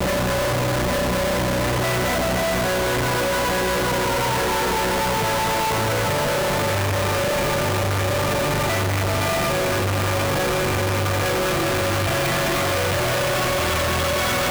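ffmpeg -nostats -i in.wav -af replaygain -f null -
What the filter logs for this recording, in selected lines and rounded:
track_gain = +5.6 dB
track_peak = 0.084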